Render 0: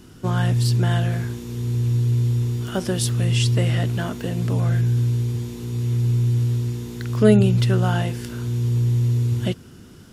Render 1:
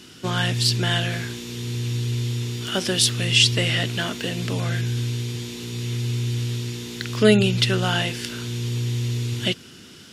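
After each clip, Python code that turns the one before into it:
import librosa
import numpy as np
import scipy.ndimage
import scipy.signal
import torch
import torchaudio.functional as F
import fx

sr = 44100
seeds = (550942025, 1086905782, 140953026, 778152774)

y = fx.weighting(x, sr, curve='D')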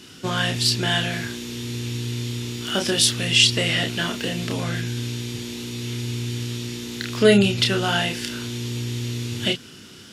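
y = fx.doubler(x, sr, ms=30.0, db=-5)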